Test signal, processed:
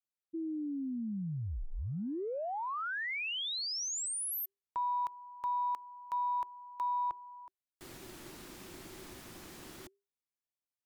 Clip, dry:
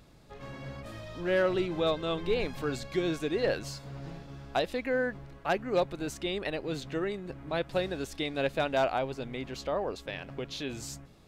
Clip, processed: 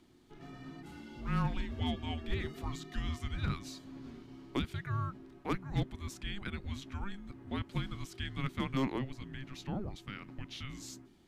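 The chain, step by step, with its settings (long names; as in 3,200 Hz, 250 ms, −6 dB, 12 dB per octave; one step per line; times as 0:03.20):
harmonic generator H 2 −35 dB, 3 −26 dB, 4 −41 dB, 5 −45 dB, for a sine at −18.5 dBFS
frequency shifter −400 Hz
level −5 dB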